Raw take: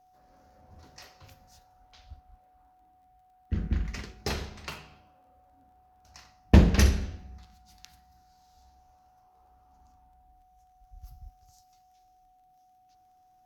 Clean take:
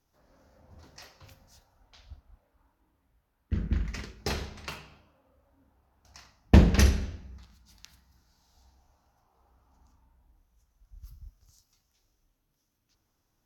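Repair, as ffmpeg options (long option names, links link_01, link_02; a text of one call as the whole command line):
ffmpeg -i in.wav -af "adeclick=threshold=4,bandreject=frequency=740:width=30" out.wav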